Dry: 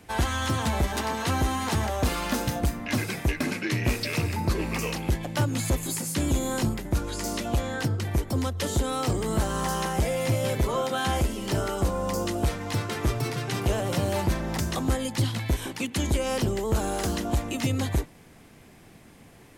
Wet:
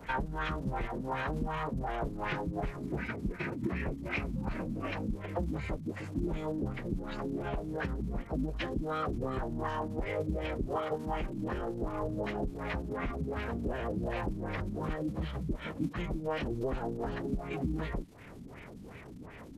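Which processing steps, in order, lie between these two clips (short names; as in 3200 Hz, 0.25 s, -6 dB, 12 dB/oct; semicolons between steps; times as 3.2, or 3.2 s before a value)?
compressor 6:1, threshold -37 dBFS, peak gain reduction 15.5 dB; LFO low-pass sine 2.7 Hz 250–2500 Hz; crackle 190/s -50 dBFS; formant-preserving pitch shift -9 st; gain +4 dB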